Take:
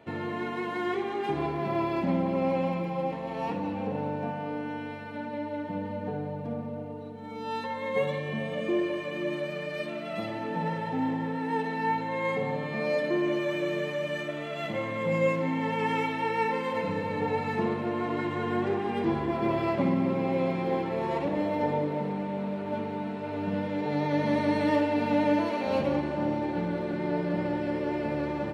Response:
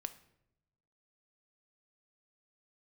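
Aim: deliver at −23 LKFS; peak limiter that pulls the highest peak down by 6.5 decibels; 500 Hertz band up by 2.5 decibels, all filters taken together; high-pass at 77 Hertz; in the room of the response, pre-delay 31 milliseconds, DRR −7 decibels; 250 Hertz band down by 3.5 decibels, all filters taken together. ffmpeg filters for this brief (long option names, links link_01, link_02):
-filter_complex "[0:a]highpass=77,equalizer=frequency=250:width_type=o:gain=-6.5,equalizer=frequency=500:width_type=o:gain=4.5,alimiter=limit=-19.5dB:level=0:latency=1,asplit=2[link_01][link_02];[1:a]atrim=start_sample=2205,adelay=31[link_03];[link_02][link_03]afir=irnorm=-1:irlink=0,volume=9.5dB[link_04];[link_01][link_04]amix=inputs=2:normalize=0,volume=-0.5dB"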